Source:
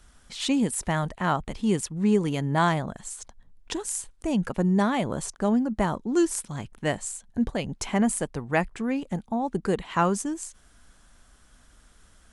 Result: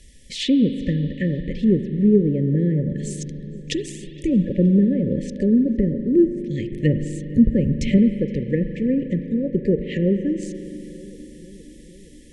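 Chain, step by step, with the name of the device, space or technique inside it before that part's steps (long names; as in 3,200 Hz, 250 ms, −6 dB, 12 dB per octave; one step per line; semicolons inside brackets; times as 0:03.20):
treble cut that deepens with the level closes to 550 Hz, closed at −21.5 dBFS
brick-wall band-stop 590–1,700 Hz
dub delay into a spring reverb (feedback echo with a low-pass in the loop 467 ms, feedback 71%, low-pass 2,500 Hz, level −20.5 dB; spring reverb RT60 3.4 s, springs 40 ms, chirp 40 ms, DRR 9 dB)
0:06.71–0:07.98: bass and treble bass +7 dB, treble −1 dB
level +7 dB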